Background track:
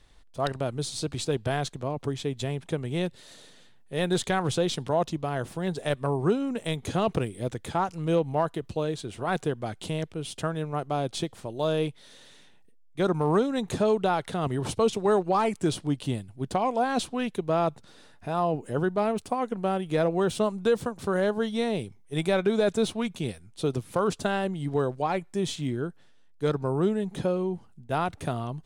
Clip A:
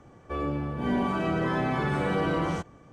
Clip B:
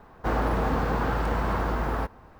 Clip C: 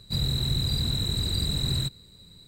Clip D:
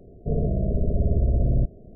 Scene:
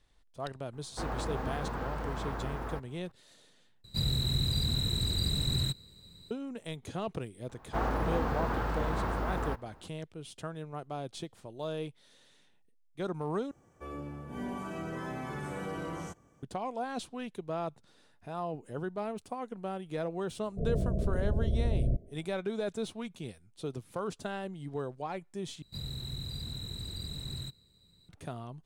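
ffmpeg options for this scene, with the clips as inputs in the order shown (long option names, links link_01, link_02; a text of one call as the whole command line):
ffmpeg -i bed.wav -i cue0.wav -i cue1.wav -i cue2.wav -i cue3.wav -filter_complex "[2:a]asplit=2[link_01][link_02];[3:a]asplit=2[link_03][link_04];[0:a]volume=-10.5dB[link_05];[1:a]aexciter=amount=4.7:drive=2.8:freq=5800[link_06];[4:a]dynaudnorm=framelen=120:gausssize=5:maxgain=11.5dB[link_07];[link_05]asplit=4[link_08][link_09][link_10][link_11];[link_08]atrim=end=3.844[link_12];[link_03]atrim=end=2.47,asetpts=PTS-STARTPTS,volume=-3.5dB[link_13];[link_09]atrim=start=6.306:end=13.514[link_14];[link_06]atrim=end=2.92,asetpts=PTS-STARTPTS,volume=-11.5dB[link_15];[link_10]atrim=start=16.426:end=25.624[link_16];[link_04]atrim=end=2.47,asetpts=PTS-STARTPTS,volume=-13dB[link_17];[link_11]atrim=start=28.086[link_18];[link_01]atrim=end=2.39,asetpts=PTS-STARTPTS,volume=-10.5dB,afade=type=in:duration=0.004:curve=hsin,afade=type=out:start_time=2.386:duration=0.004:curve=hsin,adelay=730[link_19];[link_02]atrim=end=2.39,asetpts=PTS-STARTPTS,volume=-6dB,afade=type=in:duration=0.004:curve=hsin,afade=type=out:start_time=2.386:duration=0.004:curve=hsin,adelay=7490[link_20];[link_07]atrim=end=1.95,asetpts=PTS-STARTPTS,volume=-16.5dB,afade=type=in:duration=0.004:curve=hsin,afade=type=out:start_time=1.946:duration=0.004:curve=hsin,adelay=20310[link_21];[link_12][link_13]acrossfade=duration=0.004:curve1=hsin:curve2=hsin[link_22];[link_22][link_14]acrossfade=duration=0.004:curve1=hsin:curve2=hsin[link_23];[link_23][link_15]acrossfade=duration=0.004:curve1=hsin:curve2=hsin[link_24];[link_24][link_16]acrossfade=duration=0.004:curve1=hsin:curve2=hsin[link_25];[link_25][link_17]acrossfade=duration=0.004:curve1=hsin:curve2=hsin[link_26];[link_26][link_18]acrossfade=duration=0.004:curve1=hsin:curve2=hsin[link_27];[link_27][link_19][link_20][link_21]amix=inputs=4:normalize=0" out.wav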